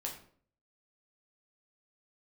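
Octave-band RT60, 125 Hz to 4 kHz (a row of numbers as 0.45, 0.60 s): 0.70, 0.60, 0.60, 0.50, 0.40, 0.35 s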